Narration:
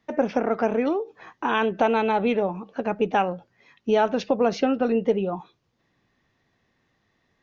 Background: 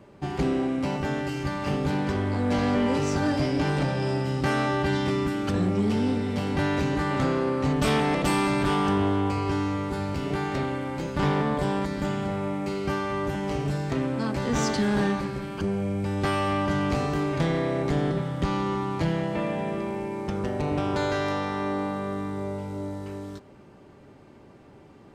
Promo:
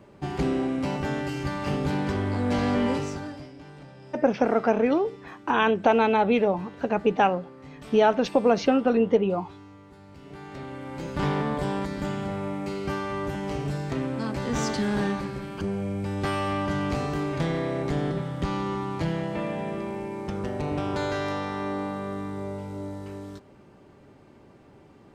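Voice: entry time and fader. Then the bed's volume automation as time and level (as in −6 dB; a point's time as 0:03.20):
4.05 s, +1.0 dB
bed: 0:02.90 −0.5 dB
0:03.55 −20.5 dB
0:10.01 −20.5 dB
0:11.11 −2 dB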